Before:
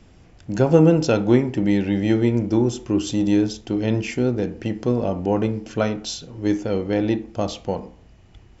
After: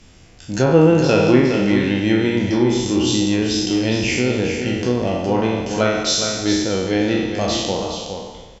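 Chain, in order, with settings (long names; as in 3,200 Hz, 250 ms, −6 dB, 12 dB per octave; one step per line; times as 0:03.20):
peak hold with a decay on every bin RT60 1.27 s
hum removal 57.95 Hz, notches 27
treble cut that deepens with the level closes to 2,700 Hz, closed at −11.5 dBFS
high-shelf EQ 2,300 Hz +10 dB
single-tap delay 413 ms −7.5 dB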